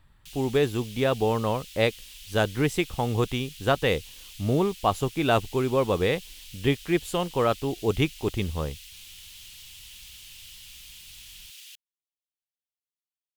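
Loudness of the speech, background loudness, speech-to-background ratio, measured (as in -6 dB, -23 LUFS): -26.5 LUFS, -43.5 LUFS, 17.0 dB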